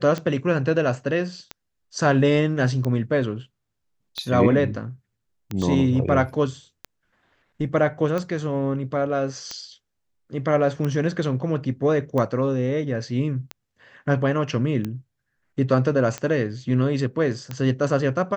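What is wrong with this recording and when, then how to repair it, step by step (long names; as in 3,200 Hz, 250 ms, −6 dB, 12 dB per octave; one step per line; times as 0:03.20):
scratch tick 45 rpm −15 dBFS
0:05.62: drop-out 2.3 ms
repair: click removal
repair the gap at 0:05.62, 2.3 ms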